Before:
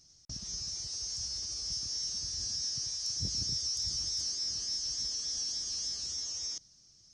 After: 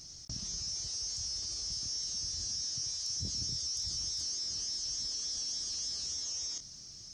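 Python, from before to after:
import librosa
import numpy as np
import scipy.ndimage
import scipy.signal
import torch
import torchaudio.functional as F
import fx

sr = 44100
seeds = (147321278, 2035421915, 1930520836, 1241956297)

y = fx.doubler(x, sr, ms=25.0, db=-12.0)
y = fx.env_flatten(y, sr, amount_pct=50)
y = y * 10.0 ** (-3.0 / 20.0)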